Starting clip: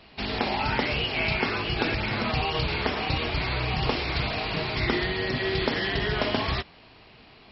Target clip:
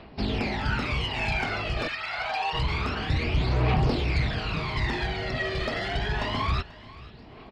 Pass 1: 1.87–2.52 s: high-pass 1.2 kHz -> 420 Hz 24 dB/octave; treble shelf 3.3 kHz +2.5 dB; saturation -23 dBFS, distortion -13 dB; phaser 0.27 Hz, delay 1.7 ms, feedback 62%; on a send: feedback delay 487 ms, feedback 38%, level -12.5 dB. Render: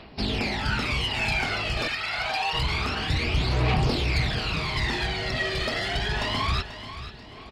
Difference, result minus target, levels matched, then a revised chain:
8 kHz band +7.0 dB; echo-to-direct +7.5 dB
1.87–2.52 s: high-pass 1.2 kHz -> 420 Hz 24 dB/octave; treble shelf 3.3 kHz -8.5 dB; saturation -23 dBFS, distortion -14 dB; phaser 0.27 Hz, delay 1.7 ms, feedback 62%; on a send: feedback delay 487 ms, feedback 38%, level -20 dB

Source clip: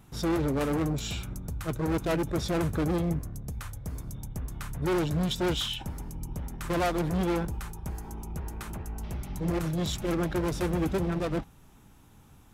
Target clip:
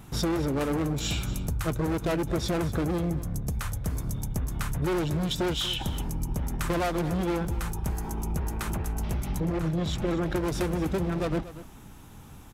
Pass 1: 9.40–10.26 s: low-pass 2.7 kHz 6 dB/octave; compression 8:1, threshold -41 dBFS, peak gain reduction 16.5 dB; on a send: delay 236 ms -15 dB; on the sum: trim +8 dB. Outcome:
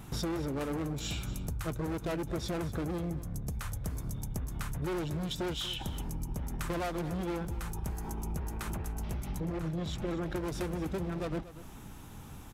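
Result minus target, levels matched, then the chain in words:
compression: peak gain reduction +7 dB
9.40–10.26 s: low-pass 2.7 kHz 6 dB/octave; compression 8:1, threshold -33 dBFS, peak gain reduction 9.5 dB; on a send: delay 236 ms -15 dB; on the sum: trim +8 dB

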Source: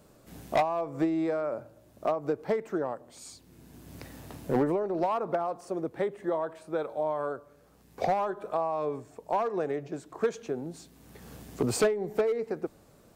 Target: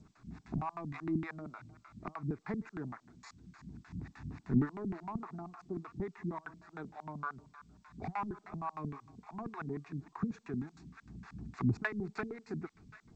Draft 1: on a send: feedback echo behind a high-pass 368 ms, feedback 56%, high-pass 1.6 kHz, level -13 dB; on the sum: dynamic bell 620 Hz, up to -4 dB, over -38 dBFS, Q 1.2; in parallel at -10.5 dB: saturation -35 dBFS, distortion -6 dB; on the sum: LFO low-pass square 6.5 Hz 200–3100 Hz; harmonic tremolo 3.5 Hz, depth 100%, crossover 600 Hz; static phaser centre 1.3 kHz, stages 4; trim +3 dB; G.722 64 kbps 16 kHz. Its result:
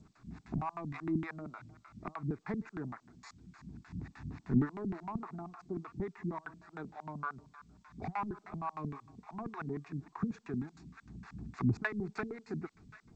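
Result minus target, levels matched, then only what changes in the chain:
saturation: distortion -5 dB
change: saturation -45 dBFS, distortion -2 dB

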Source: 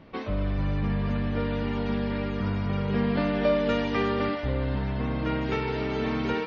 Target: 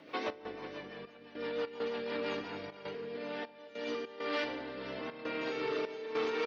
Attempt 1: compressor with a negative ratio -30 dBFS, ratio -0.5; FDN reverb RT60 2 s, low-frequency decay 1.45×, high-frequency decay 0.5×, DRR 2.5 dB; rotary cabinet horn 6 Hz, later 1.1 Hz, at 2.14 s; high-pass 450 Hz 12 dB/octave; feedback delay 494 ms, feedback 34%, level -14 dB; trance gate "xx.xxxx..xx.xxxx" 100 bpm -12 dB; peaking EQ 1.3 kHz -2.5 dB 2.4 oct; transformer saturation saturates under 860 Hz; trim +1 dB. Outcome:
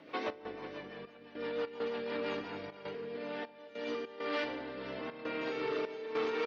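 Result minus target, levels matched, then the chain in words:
8 kHz band -3.5 dB
compressor with a negative ratio -30 dBFS, ratio -0.5; FDN reverb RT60 2 s, low-frequency decay 1.45×, high-frequency decay 0.5×, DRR 2.5 dB; rotary cabinet horn 6 Hz, later 1.1 Hz, at 2.14 s; high-pass 450 Hz 12 dB/octave; treble shelf 5.4 kHz +7 dB; feedback delay 494 ms, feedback 34%, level -14 dB; trance gate "xx.xxxx..xx.xxxx" 100 bpm -12 dB; peaking EQ 1.3 kHz -2.5 dB 2.4 oct; transformer saturation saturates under 860 Hz; trim +1 dB

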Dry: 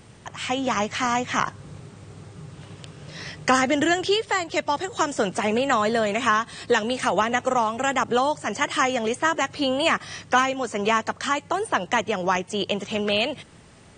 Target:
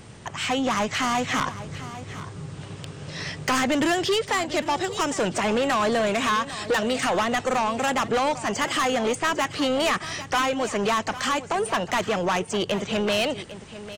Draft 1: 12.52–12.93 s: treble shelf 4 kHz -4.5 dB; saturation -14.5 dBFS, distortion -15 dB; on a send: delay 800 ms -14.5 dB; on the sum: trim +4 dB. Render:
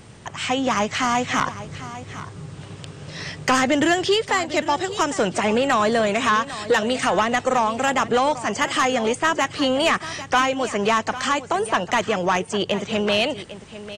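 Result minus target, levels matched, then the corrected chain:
saturation: distortion -7 dB
12.52–12.93 s: treble shelf 4 kHz -4.5 dB; saturation -22.5 dBFS, distortion -8 dB; on a send: delay 800 ms -14.5 dB; on the sum: trim +4 dB

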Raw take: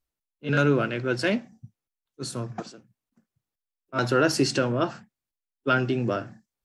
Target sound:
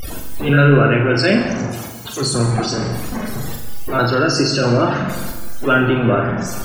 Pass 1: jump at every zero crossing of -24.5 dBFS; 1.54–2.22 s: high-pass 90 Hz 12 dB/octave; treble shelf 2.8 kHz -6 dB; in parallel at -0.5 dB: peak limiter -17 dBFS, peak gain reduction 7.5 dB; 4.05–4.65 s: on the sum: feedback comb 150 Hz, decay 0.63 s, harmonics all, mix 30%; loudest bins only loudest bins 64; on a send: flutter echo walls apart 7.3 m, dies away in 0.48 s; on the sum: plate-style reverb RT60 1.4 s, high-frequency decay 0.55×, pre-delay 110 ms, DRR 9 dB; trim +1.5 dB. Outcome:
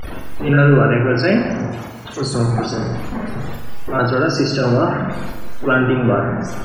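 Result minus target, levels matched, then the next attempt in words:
4 kHz band -5.0 dB
jump at every zero crossing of -24.5 dBFS; 1.54–2.22 s: high-pass 90 Hz 12 dB/octave; treble shelf 2.8 kHz +2 dB; in parallel at -0.5 dB: peak limiter -17 dBFS, peak gain reduction 8 dB; 4.05–4.65 s: on the sum: feedback comb 150 Hz, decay 0.63 s, harmonics all, mix 30%; loudest bins only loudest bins 64; on a send: flutter echo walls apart 7.3 m, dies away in 0.48 s; on the sum: plate-style reverb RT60 1.4 s, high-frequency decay 0.55×, pre-delay 110 ms, DRR 9 dB; trim +1.5 dB

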